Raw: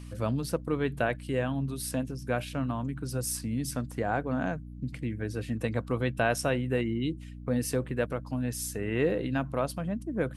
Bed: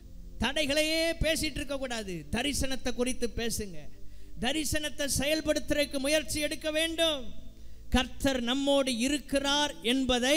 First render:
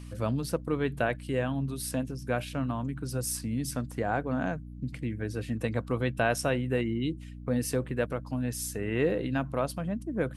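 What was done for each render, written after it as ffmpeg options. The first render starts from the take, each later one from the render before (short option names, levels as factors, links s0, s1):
-af anull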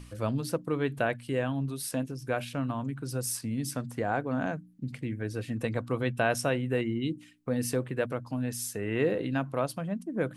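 -af "bandreject=f=60:t=h:w=4,bandreject=f=120:t=h:w=4,bandreject=f=180:t=h:w=4,bandreject=f=240:t=h:w=4,bandreject=f=300:t=h:w=4"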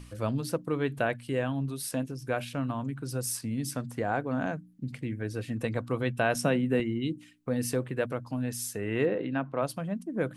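-filter_complex "[0:a]asettb=1/sr,asplit=3[s0][s1][s2];[s0]atrim=end=6.354[s3];[s1]atrim=start=6.35:end=6.8,asetpts=PTS-STARTPTS,afade=t=in:d=0.004:c=qsin,afade=t=out:st=0.446:d=0.004:c=qsin,highpass=f=180:t=q:w=4.9[s4];[s2]atrim=start=6.796[s5];[s3][s4]acrossfade=d=0.004:c1=hsin:c2=qsin[s6];[s6][s5]acrossfade=d=0.004:c1=qsin:c2=hsin,asplit=3[s7][s8][s9];[s7]afade=t=out:st=9.05:d=0.02[s10];[s8]highpass=150,lowpass=2800,afade=t=in:st=9.05:d=0.02,afade=t=out:st=9.61:d=0.02[s11];[s9]afade=t=in:st=9.61:d=0.02[s12];[s10][s11][s12]amix=inputs=3:normalize=0"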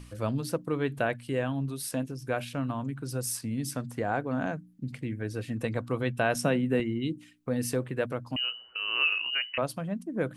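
-filter_complex "[0:a]asettb=1/sr,asplit=3[s0][s1][s2];[s0]atrim=end=8.364[s3];[s1]atrim=start=8.36:end=9.58,asetpts=PTS-STARTPTS,afade=t=in:d=0.004:c=qsin,afade=t=out:st=1.216:d=0.004:c=qsin,lowpass=f=2600:t=q:w=0.5098,lowpass=f=2600:t=q:w=0.6013,lowpass=f=2600:t=q:w=0.9,lowpass=f=2600:t=q:w=2.563,afreqshift=-3100[s4];[s2]atrim=start=9.576[s5];[s3][s4]acrossfade=d=0.004:c1=hsin:c2=qsin[s6];[s6][s5]acrossfade=d=0.004:c1=qsin:c2=hsin"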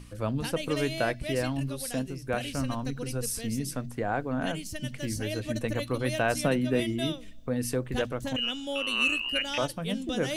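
-filter_complex "[1:a]volume=0.398[s0];[0:a][s0]amix=inputs=2:normalize=0"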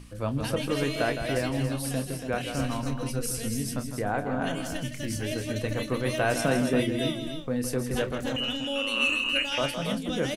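-filter_complex "[0:a]asplit=2[s0][s1];[s1]adelay=29,volume=0.282[s2];[s0][s2]amix=inputs=2:normalize=0,aecho=1:1:162|281:0.376|0.422"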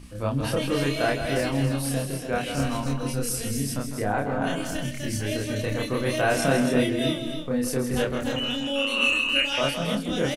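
-filter_complex "[0:a]asplit=2[s0][s1];[s1]adelay=29,volume=0.75[s2];[s0][s2]amix=inputs=2:normalize=0,asplit=2[s3][s4];[s4]adelay=349.9,volume=0.0708,highshelf=f=4000:g=-7.87[s5];[s3][s5]amix=inputs=2:normalize=0"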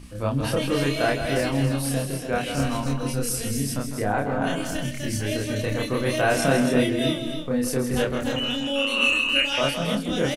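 -af "volume=1.19"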